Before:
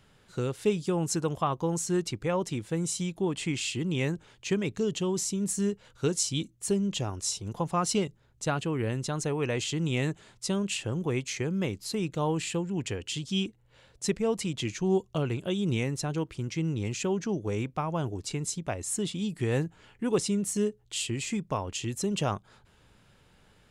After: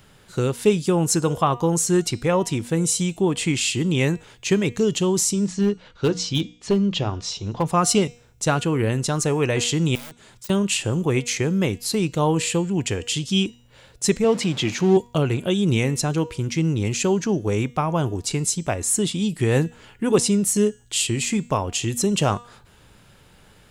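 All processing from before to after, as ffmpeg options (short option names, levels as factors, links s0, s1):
-filter_complex "[0:a]asettb=1/sr,asplit=3[s0][s1][s2];[s0]atrim=end=5.334[s3];[s1]atrim=start=5.33:end=7.66,asetpts=PTS-STARTPTS,afade=t=in:d=0.004:c=qsin,afade=t=out:st=2.326:d=0.004:c=qsin,lowpass=f=4800:w=0.5412,lowpass=f=4800:w=1.3066,bandreject=f=60:t=h:w=6,bandreject=f=120:t=h:w=6,bandreject=f=180:t=h:w=6,bandreject=f=240:t=h:w=6,bandreject=f=300:t=h:w=6,asoftclip=type=hard:threshold=0.0841[s4];[s2]atrim=start=7.656[s5];[s3][s4]acrossfade=d=0.004:c1=hsin:c2=qsin[s6];[s6][s5]acrossfade=d=0.004:c1=qsin:c2=hsin,asettb=1/sr,asplit=3[s7][s8][s9];[s7]atrim=end=9.954[s10];[s8]atrim=start=9.95:end=10.5,asetpts=PTS-STARTPTS,afade=t=in:d=0.004:c=qsin,afade=t=out:st=0.546:d=0.004:c=qsin,aeval=exprs='(mod(21.1*val(0)+1,2)-1)/21.1':c=same,acompressor=threshold=0.002:ratio=3:attack=3.2:release=140:knee=1:detection=peak[s11];[s9]atrim=start=10.496[s12];[s10][s11]acrossfade=d=0.004:c1=hsin:c2=qsin[s13];[s13][s12]acrossfade=d=0.004:c1=qsin:c2=hsin,asettb=1/sr,asplit=3[s14][s15][s16];[s14]atrim=end=14.244[s17];[s15]atrim=start=14.24:end=14.97,asetpts=PTS-STARTPTS,afade=t=in:d=0.004:c=qsin,afade=t=out:st=0.726:d=0.004:c=qsin,aeval=exprs='val(0)+0.5*0.0126*sgn(val(0))':c=same,highpass=120,lowpass=5300[s18];[s16]atrim=start=14.966[s19];[s17][s18]acrossfade=d=0.004:c1=hsin:c2=qsin[s20];[s20][s19]acrossfade=d=0.004:c1=qsin:c2=hsin,bandreject=f=239.4:t=h:w=4,bandreject=f=478.8:t=h:w=4,bandreject=f=718.2:t=h:w=4,bandreject=f=957.6:t=h:w=4,bandreject=f=1197:t=h:w=4,bandreject=f=1436.4:t=h:w=4,bandreject=f=1675.8:t=h:w=4,bandreject=f=1915.2:t=h:w=4,bandreject=f=2154.6:t=h:w=4,bandreject=f=2394:t=h:w=4,bandreject=f=2633.4:t=h:w=4,bandreject=f=2872.8:t=h:w=4,bandreject=f=3112.2:t=h:w=4,bandreject=f=3351.6:t=h:w=4,bandreject=f=3591:t=h:w=4,bandreject=f=3830.4:t=h:w=4,bandreject=f=4069.8:t=h:w=4,bandreject=f=4309.2:t=h:w=4,bandreject=f=4548.6:t=h:w=4,bandreject=f=4788:t=h:w=4,bandreject=f=5027.4:t=h:w=4,bandreject=f=5266.8:t=h:w=4,bandreject=f=5506.2:t=h:w=4,bandreject=f=5745.6:t=h:w=4,bandreject=f=5985:t=h:w=4,bandreject=f=6224.4:t=h:w=4,bandreject=f=6463.8:t=h:w=4,bandreject=f=6703.2:t=h:w=4,bandreject=f=6942.6:t=h:w=4,bandreject=f=7182:t=h:w=4,bandreject=f=7421.4:t=h:w=4,bandreject=f=7660.8:t=h:w=4,bandreject=f=7900.2:t=h:w=4,bandreject=f=8139.6:t=h:w=4,bandreject=f=8379:t=h:w=4,bandreject=f=8618.4:t=h:w=4,deesser=0.45,highshelf=f=11000:g=10,volume=2.66"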